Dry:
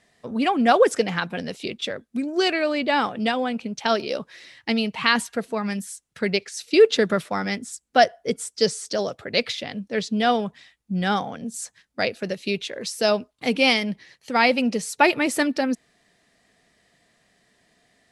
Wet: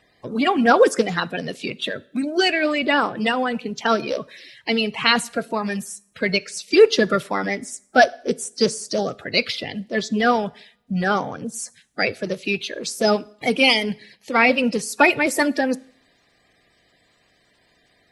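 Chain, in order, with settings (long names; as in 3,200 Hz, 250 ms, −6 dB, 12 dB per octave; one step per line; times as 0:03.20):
spectral magnitudes quantised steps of 30 dB
coupled-rooms reverb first 0.58 s, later 1.6 s, from −26 dB, DRR 19.5 dB
level +3 dB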